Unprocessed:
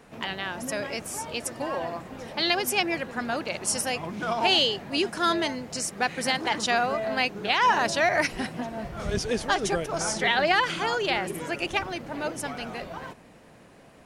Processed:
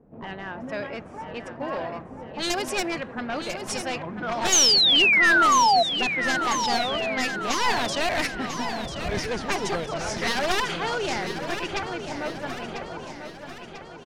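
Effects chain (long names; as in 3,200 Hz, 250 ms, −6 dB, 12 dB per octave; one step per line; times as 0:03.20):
wavefolder on the positive side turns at −23 dBFS
low-pass that shuts in the quiet parts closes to 410 Hz, open at −22 dBFS
sound drawn into the spectrogram fall, 0:04.52–0:05.83, 660–6,800 Hz −18 dBFS
on a send: repeating echo 994 ms, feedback 54%, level −9 dB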